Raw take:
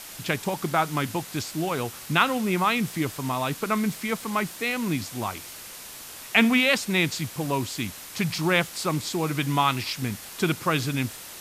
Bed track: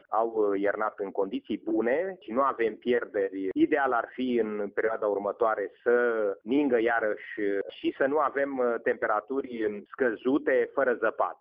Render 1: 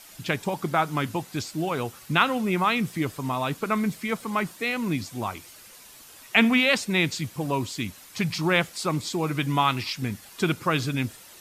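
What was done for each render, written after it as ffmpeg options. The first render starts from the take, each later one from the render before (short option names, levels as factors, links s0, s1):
-af "afftdn=nr=9:nf=-41"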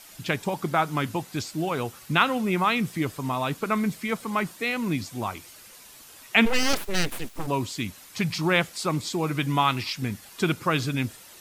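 -filter_complex "[0:a]asplit=3[s0][s1][s2];[s0]afade=t=out:st=6.45:d=0.02[s3];[s1]aeval=exprs='abs(val(0))':c=same,afade=t=in:st=6.45:d=0.02,afade=t=out:st=7.46:d=0.02[s4];[s2]afade=t=in:st=7.46:d=0.02[s5];[s3][s4][s5]amix=inputs=3:normalize=0"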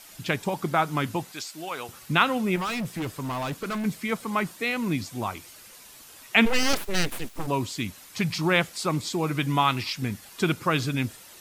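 -filter_complex "[0:a]asettb=1/sr,asplit=3[s0][s1][s2];[s0]atrim=end=1.324[s3];[s1]atrim=start=1.32:end=1.89,asetpts=PTS-STARTPTS,afade=t=in:d=0.004:c=qsin,afade=t=out:st=0.566:d=0.004:c=qsin,highpass=f=1100:p=1[s4];[s2]atrim=start=1.886[s5];[s3][s4]acrossfade=d=0.004:c1=hsin:c2=qsin[s6];[s6][s5]acrossfade=d=0.004:c1=qsin:c2=hsin,asettb=1/sr,asplit=3[s7][s8][s9];[s7]atrim=end=2.564[s10];[s8]atrim=start=2.56:end=3.85,asetpts=PTS-STARTPTS,afade=t=in:d=0.004:c=qsin,afade=t=out:st=1.286:d=0.004:c=qsin,asoftclip=type=hard:threshold=0.0447[s11];[s9]atrim=start=3.846[s12];[s10][s11]acrossfade=d=0.004:c1=hsin:c2=qsin[s13];[s13][s12]acrossfade=d=0.004:c1=qsin:c2=hsin"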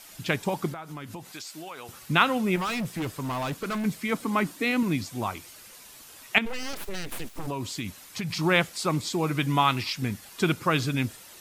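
-filter_complex "[0:a]asettb=1/sr,asplit=3[s0][s1][s2];[s0]atrim=end=0.724[s3];[s1]atrim=start=0.72:end=2.02,asetpts=PTS-STARTPTS,afade=t=in:d=0.004:c=qsin,afade=t=out:st=1.296:d=0.004:c=qsin,acompressor=threshold=0.0178:ratio=8:attack=3.2:release=140:knee=1:detection=peak[s4];[s2]atrim=start=2.016[s5];[s3][s4]acrossfade=d=0.004:c1=hsin:c2=qsin[s6];[s6][s5]acrossfade=d=0.004:c1=qsin:c2=hsin,asettb=1/sr,asplit=3[s7][s8][s9];[s7]atrim=end=4.144[s10];[s8]atrim=start=4.14:end=4.83,asetpts=PTS-STARTPTS,afade=t=in:d=0.004:c=qsin,afade=t=out:st=0.686:d=0.004:c=qsin,equalizer=f=280:w=3.6:g=12.5[s11];[s9]atrim=start=4.826[s12];[s10][s11]acrossfade=d=0.004:c1=hsin:c2=qsin[s13];[s13][s12]acrossfade=d=0.004:c1=qsin:c2=hsin,asettb=1/sr,asplit=3[s14][s15][s16];[s14]atrim=end=6.384[s17];[s15]atrim=start=6.38:end=8.37,asetpts=PTS-STARTPTS,afade=t=in:d=0.004:c=qsin,afade=t=out:st=1.986:d=0.004:c=qsin,acompressor=threshold=0.0447:ratio=8:attack=3.2:release=140:knee=1:detection=peak[s18];[s16]atrim=start=8.366[s19];[s17][s18]acrossfade=d=0.004:c1=hsin:c2=qsin[s20];[s20][s19]acrossfade=d=0.004:c1=qsin:c2=hsin"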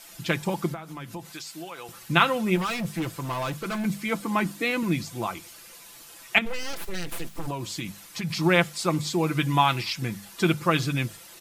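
-af "bandreject=f=50:t=h:w=6,bandreject=f=100:t=h:w=6,bandreject=f=150:t=h:w=6,bandreject=f=200:t=h:w=6,aecho=1:1:5.9:0.51"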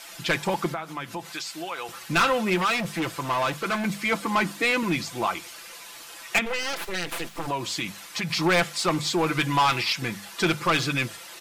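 -filter_complex "[0:a]asplit=2[s0][s1];[s1]highpass=f=720:p=1,volume=5.01,asoftclip=type=tanh:threshold=0.708[s2];[s0][s2]amix=inputs=2:normalize=0,lowpass=f=3900:p=1,volume=0.501,asoftclip=type=tanh:threshold=0.158"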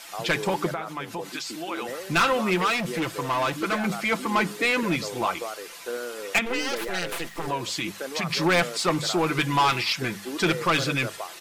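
-filter_complex "[1:a]volume=0.355[s0];[0:a][s0]amix=inputs=2:normalize=0"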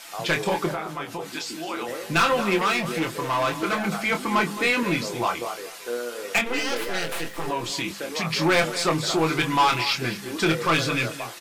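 -filter_complex "[0:a]asplit=2[s0][s1];[s1]adelay=25,volume=0.501[s2];[s0][s2]amix=inputs=2:normalize=0,aecho=1:1:217:0.211"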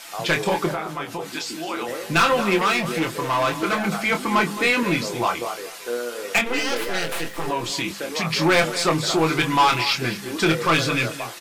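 -af "volume=1.33"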